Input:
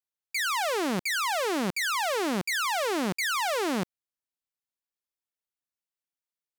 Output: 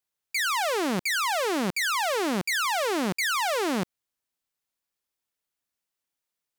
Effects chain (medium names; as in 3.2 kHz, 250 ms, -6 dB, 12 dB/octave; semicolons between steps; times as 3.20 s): peak limiter -28.5 dBFS, peak gain reduction 5.5 dB; trim +7 dB